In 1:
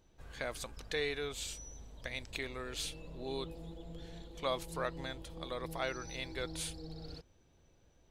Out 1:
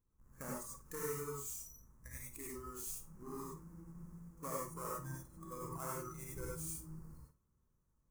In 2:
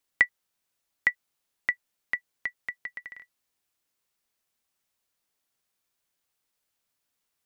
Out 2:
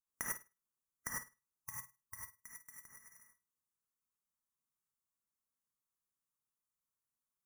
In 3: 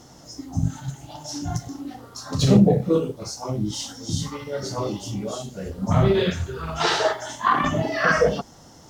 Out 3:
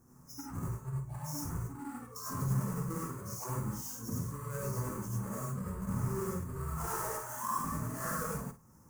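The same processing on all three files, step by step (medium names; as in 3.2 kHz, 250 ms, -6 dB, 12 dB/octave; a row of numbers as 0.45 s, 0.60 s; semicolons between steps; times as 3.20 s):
square wave that keeps the level; spectral noise reduction 13 dB; FFT filter 180 Hz 0 dB, 750 Hz -12 dB, 1.1 kHz +1 dB, 3.6 kHz -28 dB, 6.4 kHz -2 dB, 10 kHz +1 dB; compression 4:1, threshold -35 dBFS; flutter echo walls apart 8.9 m, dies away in 0.26 s; gated-style reverb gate 120 ms rising, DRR -4 dB; trim -6.5 dB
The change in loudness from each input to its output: -4.5 LU, -15.0 LU, -14.5 LU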